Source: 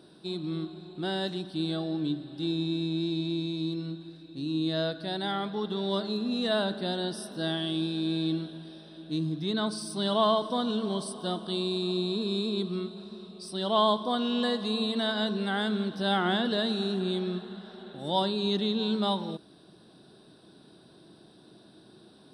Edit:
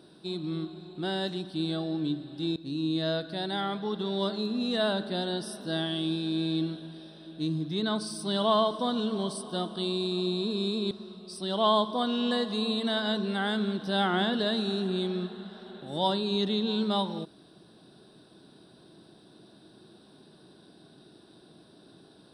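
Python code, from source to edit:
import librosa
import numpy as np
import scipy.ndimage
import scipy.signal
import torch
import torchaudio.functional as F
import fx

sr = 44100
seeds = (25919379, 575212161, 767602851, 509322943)

y = fx.edit(x, sr, fx.cut(start_s=2.56, length_s=1.71),
    fx.cut(start_s=12.62, length_s=0.41), tone=tone)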